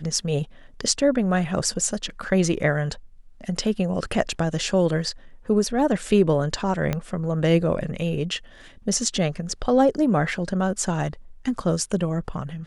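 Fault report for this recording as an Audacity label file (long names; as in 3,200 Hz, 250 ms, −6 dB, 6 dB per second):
6.930000	6.930000	click −11 dBFS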